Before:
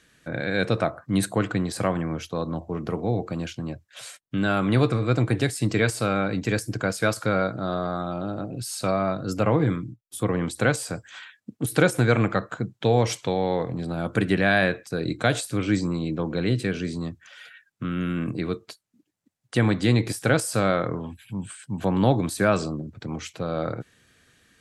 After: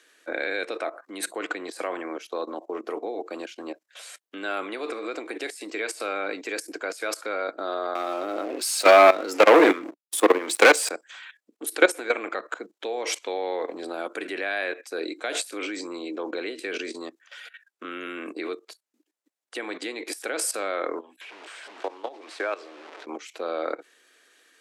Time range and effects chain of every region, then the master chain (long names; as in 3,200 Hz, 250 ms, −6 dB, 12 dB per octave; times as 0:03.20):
0:07.95–0:10.89: high-pass filter 170 Hz + leveller curve on the samples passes 3 + hard clipping −11.5 dBFS
0:21.21–0:23.06: linear delta modulator 64 kbit/s, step −31.5 dBFS + downward compressor 16 to 1, threshold −23 dBFS + band-pass filter 370–3,600 Hz
whole clip: dynamic equaliser 2,300 Hz, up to +5 dB, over −46 dBFS, Q 2.5; output level in coarse steps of 16 dB; Butterworth high-pass 320 Hz 36 dB per octave; level +5 dB